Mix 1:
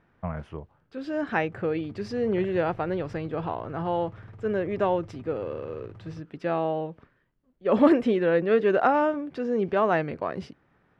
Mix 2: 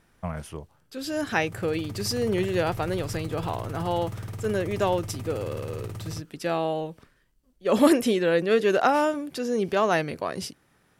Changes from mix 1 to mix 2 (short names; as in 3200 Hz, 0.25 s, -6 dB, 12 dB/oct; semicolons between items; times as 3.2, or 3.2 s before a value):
background +10.0 dB; master: remove LPF 2000 Hz 12 dB/oct